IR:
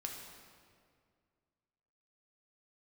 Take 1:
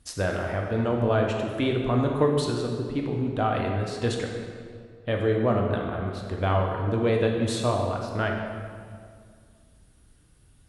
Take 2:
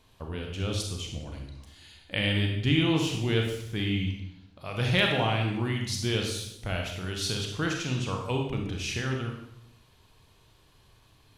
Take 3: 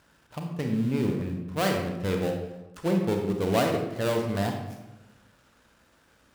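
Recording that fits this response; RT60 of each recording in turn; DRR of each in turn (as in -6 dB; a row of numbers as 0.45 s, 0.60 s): 1; 2.1 s, 0.80 s, 1.0 s; 0.5 dB, 1.0 dB, 2.0 dB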